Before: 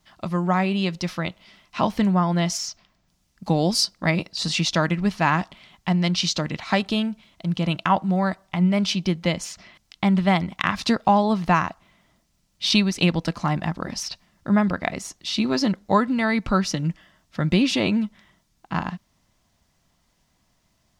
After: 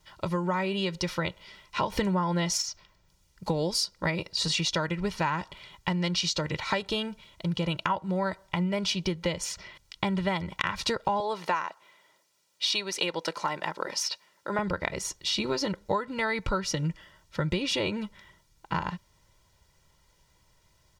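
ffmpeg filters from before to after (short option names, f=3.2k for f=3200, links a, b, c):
-filter_complex "[0:a]asettb=1/sr,asplit=3[a][b][c];[a]atrim=end=11.204[d];[b]atrim=start=11.2:end=14.59,asetpts=PTS-STARTPTS,afade=t=in:d=0.004:c=qsin,afade=t=out:st=3.386:d=0.004:c=qsin,highpass=390[e];[c]atrim=start=14.586[f];[d][e]acrossfade=d=0.004:c1=hsin:c2=qsin[g];[g][f]acrossfade=d=0.004:c1=qsin:c2=hsin,asplit=3[h][i][j];[h]atrim=end=1.922[k];[i]atrim=start=1.918:end=2.622,asetpts=PTS-STARTPTS,volume=7.5dB[l];[j]atrim=start=2.618[m];[k][l]acrossfade=d=0.004:c1=hsin:c2=hsin[n];[n][m]acrossfade=d=0.004:c1=hsin:c2=hsin,aecho=1:1:2.1:0.71,acompressor=threshold=-25dB:ratio=6"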